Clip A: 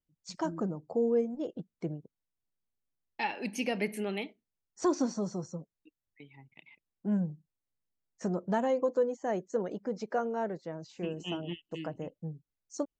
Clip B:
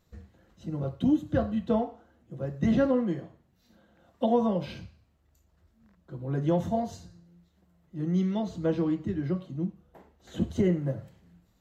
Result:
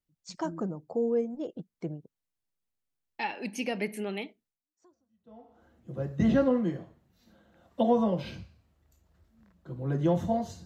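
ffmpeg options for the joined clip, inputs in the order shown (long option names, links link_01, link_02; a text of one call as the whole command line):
ffmpeg -i cue0.wav -i cue1.wav -filter_complex "[0:a]apad=whole_dur=10.65,atrim=end=10.65,atrim=end=5.64,asetpts=PTS-STARTPTS[link_01];[1:a]atrim=start=0.89:end=7.08,asetpts=PTS-STARTPTS[link_02];[link_01][link_02]acrossfade=duration=1.18:curve1=exp:curve2=exp" out.wav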